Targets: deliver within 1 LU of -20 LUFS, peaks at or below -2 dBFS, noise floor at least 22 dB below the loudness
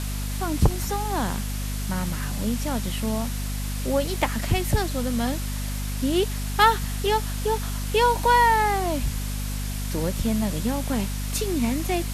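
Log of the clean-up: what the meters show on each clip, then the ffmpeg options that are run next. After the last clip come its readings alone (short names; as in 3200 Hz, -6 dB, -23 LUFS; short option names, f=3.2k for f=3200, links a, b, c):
hum 50 Hz; harmonics up to 250 Hz; hum level -26 dBFS; noise floor -29 dBFS; noise floor target -47 dBFS; loudness -25.0 LUFS; peak -5.5 dBFS; loudness target -20.0 LUFS
-> -af "bandreject=f=50:t=h:w=6,bandreject=f=100:t=h:w=6,bandreject=f=150:t=h:w=6,bandreject=f=200:t=h:w=6,bandreject=f=250:t=h:w=6"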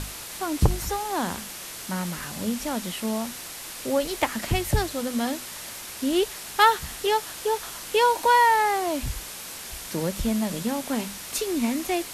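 hum none; noise floor -38 dBFS; noise floor target -48 dBFS
-> -af "afftdn=nr=10:nf=-38"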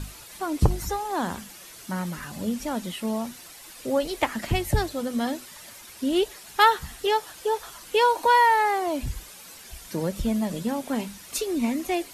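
noise floor -46 dBFS; noise floor target -48 dBFS
-> -af "afftdn=nr=6:nf=-46"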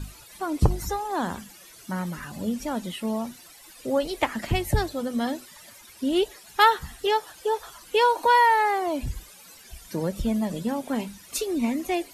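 noise floor -49 dBFS; loudness -26.0 LUFS; peak -5.5 dBFS; loudness target -20.0 LUFS
-> -af "volume=6dB,alimiter=limit=-2dB:level=0:latency=1"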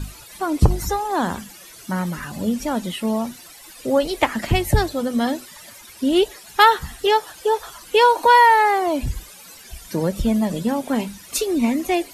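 loudness -20.0 LUFS; peak -2.0 dBFS; noise floor -43 dBFS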